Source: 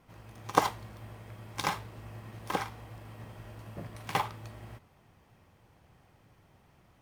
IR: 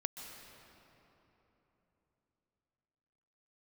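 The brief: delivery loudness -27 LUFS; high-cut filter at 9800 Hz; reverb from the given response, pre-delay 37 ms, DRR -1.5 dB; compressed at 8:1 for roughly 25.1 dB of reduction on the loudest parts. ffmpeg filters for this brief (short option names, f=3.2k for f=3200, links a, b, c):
-filter_complex "[0:a]lowpass=9.8k,acompressor=threshold=-46dB:ratio=8,asplit=2[a][b];[1:a]atrim=start_sample=2205,adelay=37[c];[b][c]afir=irnorm=-1:irlink=0,volume=1.5dB[d];[a][d]amix=inputs=2:normalize=0,volume=19dB"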